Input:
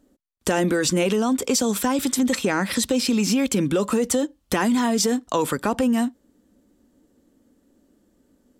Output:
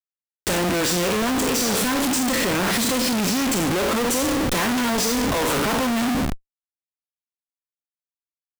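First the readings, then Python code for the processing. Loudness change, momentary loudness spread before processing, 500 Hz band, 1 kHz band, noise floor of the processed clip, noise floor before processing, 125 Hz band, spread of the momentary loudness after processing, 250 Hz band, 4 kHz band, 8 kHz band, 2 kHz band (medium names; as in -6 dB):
+1.0 dB, 4 LU, -0.5 dB, +3.0 dB, under -85 dBFS, -65 dBFS, +1.0 dB, 2 LU, -1.0 dB, +4.5 dB, +2.0 dB, +4.5 dB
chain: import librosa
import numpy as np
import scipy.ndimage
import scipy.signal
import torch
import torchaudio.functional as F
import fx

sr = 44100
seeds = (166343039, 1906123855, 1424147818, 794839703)

y = fx.spec_trails(x, sr, decay_s=0.83)
y = fx.hum_notches(y, sr, base_hz=50, count=4)
y = fx.schmitt(y, sr, flips_db=-31.5)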